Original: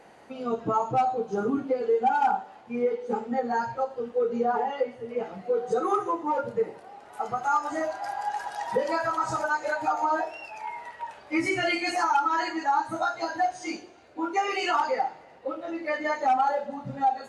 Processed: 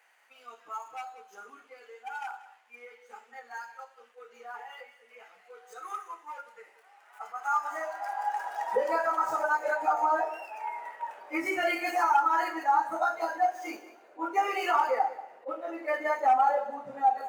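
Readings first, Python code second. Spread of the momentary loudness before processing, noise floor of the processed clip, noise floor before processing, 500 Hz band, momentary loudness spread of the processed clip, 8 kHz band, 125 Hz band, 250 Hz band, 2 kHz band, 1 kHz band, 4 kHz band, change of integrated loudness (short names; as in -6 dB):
12 LU, -61 dBFS, -51 dBFS, -6.0 dB, 20 LU, -6.0 dB, under -25 dB, -10.5 dB, -2.0 dB, -2.0 dB, -7.5 dB, -1.5 dB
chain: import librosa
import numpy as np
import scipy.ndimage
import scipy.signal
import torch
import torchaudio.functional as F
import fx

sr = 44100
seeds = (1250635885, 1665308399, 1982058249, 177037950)

p1 = scipy.ndimage.median_filter(x, 5, mode='constant')
p2 = fx.peak_eq(p1, sr, hz=4100.0, db=-10.0, octaves=1.1)
p3 = fx.filter_sweep_highpass(p2, sr, from_hz=2100.0, to_hz=490.0, start_s=6.68, end_s=8.84, q=0.86)
p4 = p3 + fx.echo_single(p3, sr, ms=186, db=-16.0, dry=0)
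y = fx.attack_slew(p4, sr, db_per_s=380.0)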